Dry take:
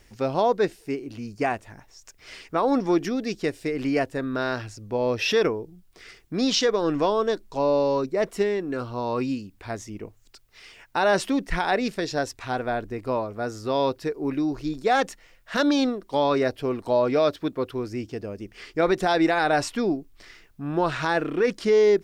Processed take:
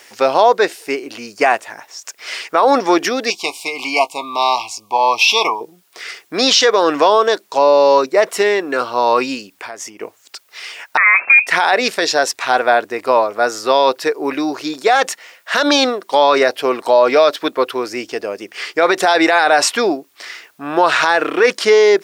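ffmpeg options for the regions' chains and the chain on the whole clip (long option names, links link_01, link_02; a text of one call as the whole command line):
ffmpeg -i in.wav -filter_complex "[0:a]asettb=1/sr,asplit=3[link_01][link_02][link_03];[link_01]atrim=end=3.304[link_04];[link_02]atrim=start=3.3:end=5.61,asetpts=PTS-STARTPTS,afade=type=in:duration=0.004:curve=qsin,afade=type=out:start_time=2.306:duration=0.004:curve=qsin,asuperstop=centerf=1600:order=20:qfactor=1.7,lowshelf=frequency=670:width_type=q:width=3:gain=-7.5,asplit=2[link_05][link_06];[link_06]adelay=18,volume=-13dB[link_07];[link_05][link_07]amix=inputs=2:normalize=0,atrim=end_sample=101871[link_08];[link_03]atrim=start=5.606[link_09];[link_04][link_08]acrossfade=duration=0.004:curve1=hsin:curve2=qsin[link_10];[link_10][link_09]acrossfade=duration=0.004:curve1=qsin:curve2=hsin,asettb=1/sr,asplit=3[link_11][link_12][link_13];[link_11]atrim=end=9.594[link_14];[link_12]atrim=start=9.59:end=10.01,asetpts=PTS-STARTPTS,afade=type=in:duration=0.004:curve=qsin,afade=type=out:start_time=0.416:duration=0.004:curve=qsin,equalizer=frequency=3900:width_type=o:width=0.22:gain=-9,acompressor=threshold=-39dB:ratio=12:attack=3.2:release=140:knee=1:detection=peak[link_15];[link_13]atrim=start=10.006[link_16];[link_14][link_15]acrossfade=duration=0.004:curve1=hsin:curve2=qsin[link_17];[link_17][link_16]acrossfade=duration=0.004:curve1=qsin:curve2=hsin,asettb=1/sr,asplit=3[link_18][link_19][link_20];[link_18]atrim=end=10.974[link_21];[link_19]atrim=start=10.97:end=11.47,asetpts=PTS-STARTPTS,afade=type=in:duration=0.004:curve=qsin,afade=type=out:start_time=0.496:duration=0.004:curve=qsin,bandreject=frequency=1800:width=13,lowpass=frequency=2300:width_type=q:width=0.5098,lowpass=frequency=2300:width_type=q:width=0.6013,lowpass=frequency=2300:width_type=q:width=0.9,lowpass=frequency=2300:width_type=q:width=2.563,afreqshift=-2700[link_22];[link_20]atrim=start=11.466[link_23];[link_21][link_22]acrossfade=duration=0.004:curve1=hsin:curve2=qsin[link_24];[link_24][link_23]acrossfade=duration=0.004:curve1=qsin:curve2=hsin,highpass=600,alimiter=level_in=18dB:limit=-1dB:release=50:level=0:latency=1,volume=-1dB" out.wav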